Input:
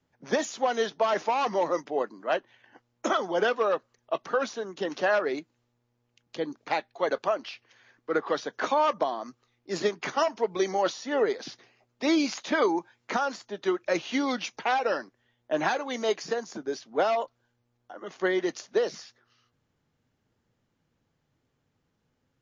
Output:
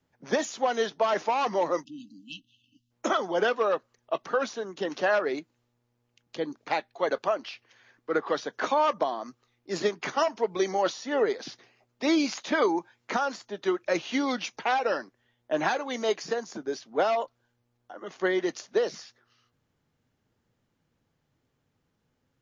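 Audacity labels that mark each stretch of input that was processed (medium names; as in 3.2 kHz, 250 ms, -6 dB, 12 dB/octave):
1.840000	2.910000	spectral selection erased 310–2600 Hz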